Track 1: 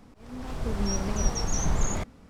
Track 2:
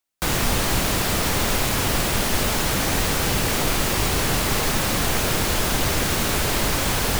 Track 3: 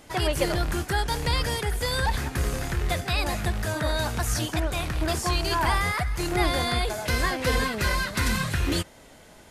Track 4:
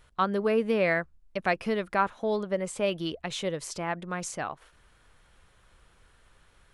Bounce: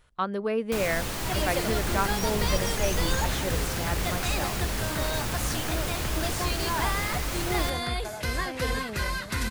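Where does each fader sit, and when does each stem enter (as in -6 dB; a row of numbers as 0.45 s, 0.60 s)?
-5.0 dB, -10.5 dB, -4.5 dB, -2.5 dB; 1.30 s, 0.50 s, 1.15 s, 0.00 s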